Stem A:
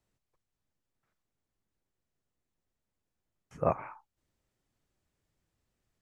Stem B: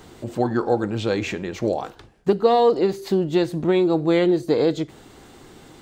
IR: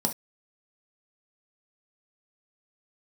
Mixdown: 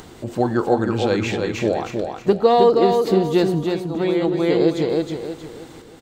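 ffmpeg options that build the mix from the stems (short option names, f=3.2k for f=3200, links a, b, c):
-filter_complex "[0:a]volume=-17dB,asplit=2[a][b];[1:a]volume=2dB,asplit=2[c][d];[d]volume=-4.5dB[e];[b]apad=whole_len=256552[f];[c][f]sidechaincompress=threshold=-54dB:ratio=8:attack=46:release=1160[g];[e]aecho=0:1:316|632|948|1264|1580:1|0.36|0.13|0.0467|0.0168[h];[a][g][h]amix=inputs=3:normalize=0,acompressor=mode=upward:threshold=-38dB:ratio=2.5"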